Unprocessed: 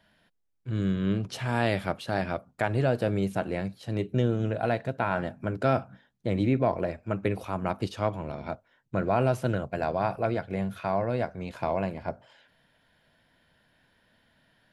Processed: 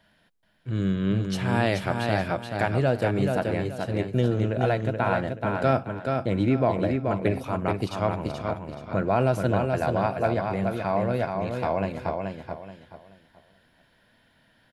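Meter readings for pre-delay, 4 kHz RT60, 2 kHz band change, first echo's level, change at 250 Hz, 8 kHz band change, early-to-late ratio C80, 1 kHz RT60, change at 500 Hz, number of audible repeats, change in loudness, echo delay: none, none, +3.5 dB, -4.5 dB, +3.5 dB, n/a, none, none, +3.5 dB, 3, +3.0 dB, 0.429 s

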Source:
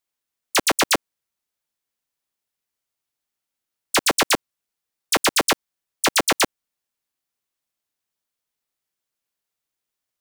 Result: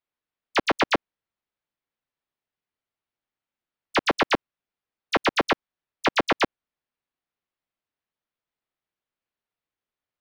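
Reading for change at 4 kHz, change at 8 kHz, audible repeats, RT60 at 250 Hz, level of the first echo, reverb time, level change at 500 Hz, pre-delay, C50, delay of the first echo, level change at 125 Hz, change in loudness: -7.5 dB, -21.5 dB, none, none, none, none, -1.0 dB, none, none, none, 0.0 dB, -4.5 dB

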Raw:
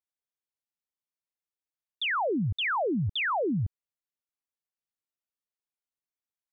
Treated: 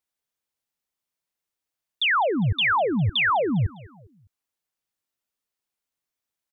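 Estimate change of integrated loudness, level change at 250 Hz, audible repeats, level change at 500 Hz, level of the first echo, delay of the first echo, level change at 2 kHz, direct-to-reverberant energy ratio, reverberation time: +6.5 dB, +4.5 dB, 2, +5.0 dB, -22.0 dB, 0.202 s, +7.5 dB, none, none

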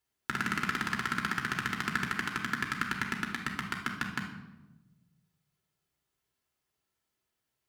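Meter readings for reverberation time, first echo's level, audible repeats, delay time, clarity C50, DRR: 1.1 s, none, none, none, 5.5 dB, 0.0 dB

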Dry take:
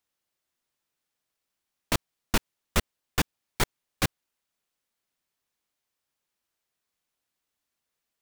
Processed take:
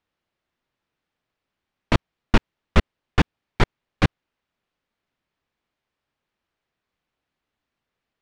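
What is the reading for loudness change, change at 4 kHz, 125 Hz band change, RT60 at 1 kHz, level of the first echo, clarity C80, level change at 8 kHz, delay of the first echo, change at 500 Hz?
+6.0 dB, +1.0 dB, +10.5 dB, none, none, none, -10.0 dB, none, +7.5 dB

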